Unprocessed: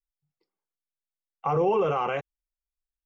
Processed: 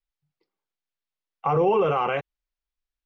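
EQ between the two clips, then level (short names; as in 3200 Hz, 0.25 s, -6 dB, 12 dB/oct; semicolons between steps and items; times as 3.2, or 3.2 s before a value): air absorption 220 m; high shelf 2700 Hz +9 dB; +3.0 dB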